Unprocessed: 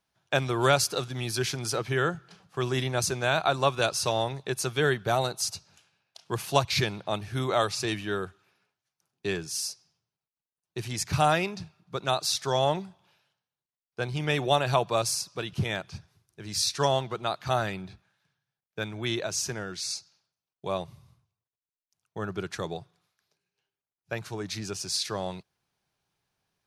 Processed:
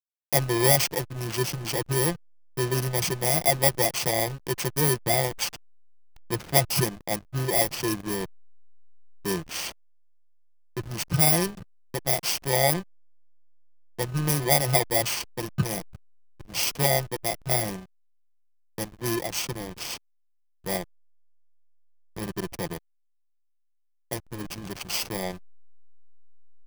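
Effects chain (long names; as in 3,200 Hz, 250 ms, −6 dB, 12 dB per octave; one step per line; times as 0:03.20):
samples in bit-reversed order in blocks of 32 samples
comb filter 5.8 ms, depth 51%
slack as between gear wheels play −26.5 dBFS
level +2.5 dB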